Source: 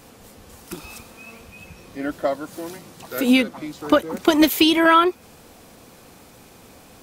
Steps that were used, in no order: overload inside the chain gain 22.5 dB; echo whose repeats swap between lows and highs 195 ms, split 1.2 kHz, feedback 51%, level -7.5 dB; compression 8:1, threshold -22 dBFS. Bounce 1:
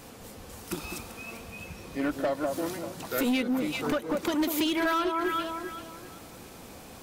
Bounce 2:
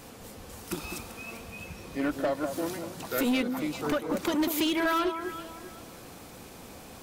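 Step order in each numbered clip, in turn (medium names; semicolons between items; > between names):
echo whose repeats swap between lows and highs > compression > overload inside the chain; compression > echo whose repeats swap between lows and highs > overload inside the chain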